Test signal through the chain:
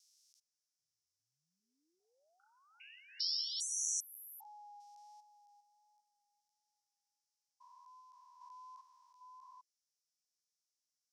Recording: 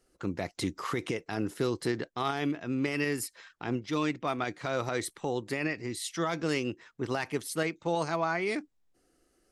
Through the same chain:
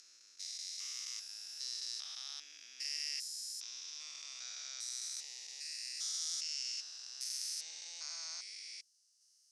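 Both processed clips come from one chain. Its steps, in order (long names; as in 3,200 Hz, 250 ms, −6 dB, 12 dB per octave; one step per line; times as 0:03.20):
spectrum averaged block by block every 400 ms
pitch vibrato 1.4 Hz 17 cents
four-pole ladder band-pass 6,000 Hz, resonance 65%
level +16.5 dB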